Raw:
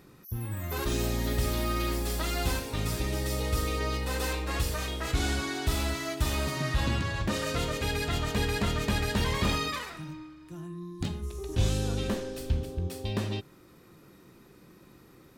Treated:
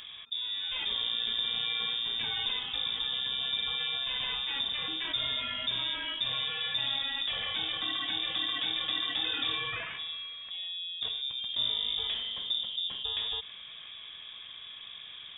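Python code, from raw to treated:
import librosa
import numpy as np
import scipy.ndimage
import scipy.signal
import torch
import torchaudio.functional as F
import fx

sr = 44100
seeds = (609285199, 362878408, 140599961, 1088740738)

y = fx.freq_invert(x, sr, carrier_hz=3600)
y = fx.env_flatten(y, sr, amount_pct=50)
y = y * librosa.db_to_amplitude(-8.5)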